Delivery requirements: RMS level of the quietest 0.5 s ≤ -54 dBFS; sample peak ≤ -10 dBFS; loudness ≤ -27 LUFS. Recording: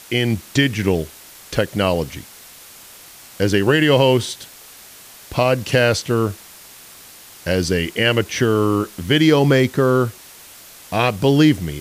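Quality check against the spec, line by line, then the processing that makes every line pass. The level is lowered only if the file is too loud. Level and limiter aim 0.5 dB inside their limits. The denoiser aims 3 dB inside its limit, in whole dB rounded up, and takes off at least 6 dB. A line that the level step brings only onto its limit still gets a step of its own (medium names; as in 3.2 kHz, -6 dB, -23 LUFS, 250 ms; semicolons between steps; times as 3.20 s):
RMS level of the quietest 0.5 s -42 dBFS: fail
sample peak -3.5 dBFS: fail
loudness -18.0 LUFS: fail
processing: noise reduction 6 dB, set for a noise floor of -42 dBFS; trim -9.5 dB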